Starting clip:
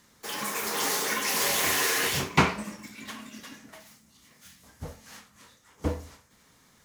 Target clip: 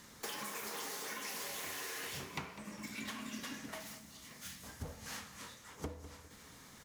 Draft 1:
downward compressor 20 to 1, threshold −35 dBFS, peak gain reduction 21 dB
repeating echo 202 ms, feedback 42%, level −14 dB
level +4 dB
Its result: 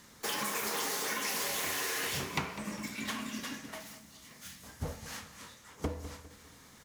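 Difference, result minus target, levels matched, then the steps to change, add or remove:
downward compressor: peak gain reduction −8.5 dB
change: downward compressor 20 to 1, threshold −44 dBFS, peak gain reduction 29.5 dB

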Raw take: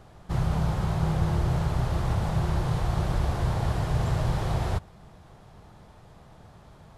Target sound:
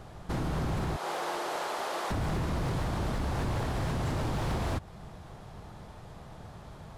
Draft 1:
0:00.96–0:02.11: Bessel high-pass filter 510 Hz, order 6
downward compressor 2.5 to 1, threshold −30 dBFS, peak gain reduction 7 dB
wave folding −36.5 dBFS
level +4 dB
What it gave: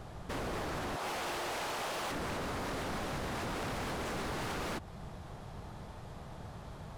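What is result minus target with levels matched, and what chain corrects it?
wave folding: distortion +19 dB
0:00.96–0:02.11: Bessel high-pass filter 510 Hz, order 6
downward compressor 2.5 to 1, threshold −30 dBFS, peak gain reduction 7 dB
wave folding −29.5 dBFS
level +4 dB

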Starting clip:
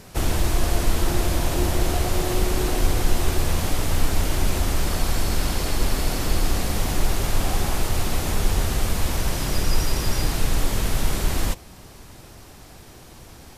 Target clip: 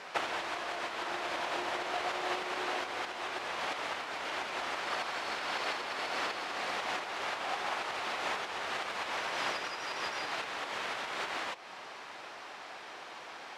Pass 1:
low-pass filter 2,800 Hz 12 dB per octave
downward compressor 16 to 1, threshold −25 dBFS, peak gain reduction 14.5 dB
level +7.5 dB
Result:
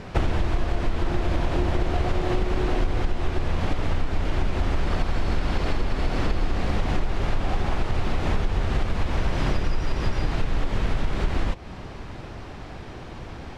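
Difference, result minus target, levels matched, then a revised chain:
1,000 Hz band −6.0 dB
low-pass filter 2,800 Hz 12 dB per octave
downward compressor 16 to 1, threshold −25 dBFS, peak gain reduction 14.5 dB
high-pass filter 800 Hz 12 dB per octave
level +7.5 dB

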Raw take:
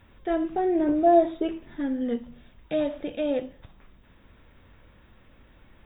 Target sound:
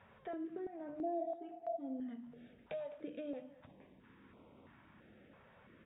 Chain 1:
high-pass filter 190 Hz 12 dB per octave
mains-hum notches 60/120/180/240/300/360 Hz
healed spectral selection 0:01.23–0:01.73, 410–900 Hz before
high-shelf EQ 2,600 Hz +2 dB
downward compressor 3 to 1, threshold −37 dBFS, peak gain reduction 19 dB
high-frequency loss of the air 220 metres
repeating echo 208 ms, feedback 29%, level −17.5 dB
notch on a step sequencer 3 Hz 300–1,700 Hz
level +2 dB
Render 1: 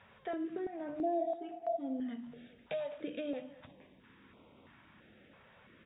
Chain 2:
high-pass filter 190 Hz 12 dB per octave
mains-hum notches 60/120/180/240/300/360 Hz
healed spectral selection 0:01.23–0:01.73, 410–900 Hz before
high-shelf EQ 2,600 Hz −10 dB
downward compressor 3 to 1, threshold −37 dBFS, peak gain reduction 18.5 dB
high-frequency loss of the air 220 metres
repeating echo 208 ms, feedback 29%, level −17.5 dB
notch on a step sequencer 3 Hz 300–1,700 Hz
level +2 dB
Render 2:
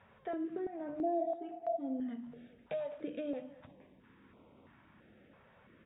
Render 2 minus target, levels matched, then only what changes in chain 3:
downward compressor: peak gain reduction −5 dB
change: downward compressor 3 to 1, threshold −44.5 dBFS, peak gain reduction 23.5 dB

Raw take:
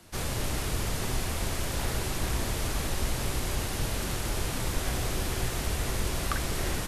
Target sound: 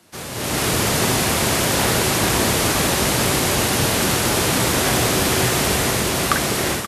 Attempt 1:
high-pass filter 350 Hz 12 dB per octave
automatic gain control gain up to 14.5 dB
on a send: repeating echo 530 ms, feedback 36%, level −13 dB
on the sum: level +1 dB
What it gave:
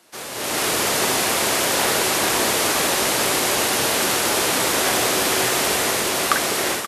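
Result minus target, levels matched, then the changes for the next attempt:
125 Hz band −12.5 dB
change: high-pass filter 140 Hz 12 dB per octave

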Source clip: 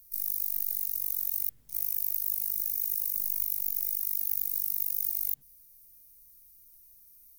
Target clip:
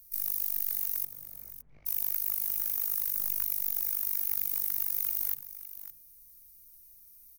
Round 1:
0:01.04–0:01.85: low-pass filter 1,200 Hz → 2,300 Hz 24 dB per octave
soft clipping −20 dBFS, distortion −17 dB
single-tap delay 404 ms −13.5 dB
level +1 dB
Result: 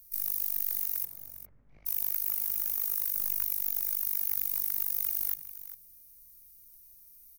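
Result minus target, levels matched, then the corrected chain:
echo 159 ms early
0:01.04–0:01.85: low-pass filter 1,200 Hz → 2,300 Hz 24 dB per octave
soft clipping −20 dBFS, distortion −17 dB
single-tap delay 563 ms −13.5 dB
level +1 dB

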